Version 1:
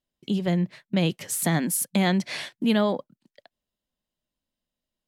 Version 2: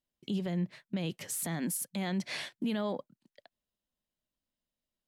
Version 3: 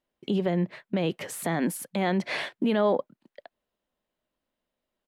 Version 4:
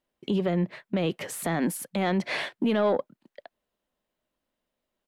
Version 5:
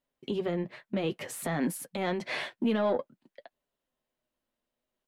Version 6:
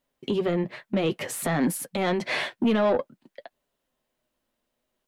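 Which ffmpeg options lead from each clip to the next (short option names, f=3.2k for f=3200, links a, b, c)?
-af "alimiter=limit=-20.5dB:level=0:latency=1:release=68,volume=-5dB"
-af "firequalizer=gain_entry='entry(120,0);entry(410,10);entry(5600,-5)':delay=0.05:min_phase=1,volume=3dB"
-af "asoftclip=type=tanh:threshold=-15.5dB,volume=1dB"
-af "flanger=delay=7.1:depth=1.6:regen=-36:speed=0.55:shape=triangular"
-af "asoftclip=type=tanh:threshold=-22dB,volume=7dB"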